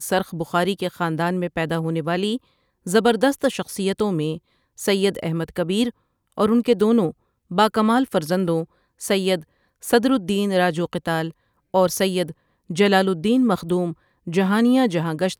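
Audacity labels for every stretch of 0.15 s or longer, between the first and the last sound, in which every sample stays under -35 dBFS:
2.370000	2.870000	silence
4.380000	4.790000	silence
5.900000	6.380000	silence
7.110000	7.510000	silence
8.640000	9.010000	silence
9.420000	9.830000	silence
11.310000	11.740000	silence
12.320000	12.700000	silence
13.930000	14.270000	silence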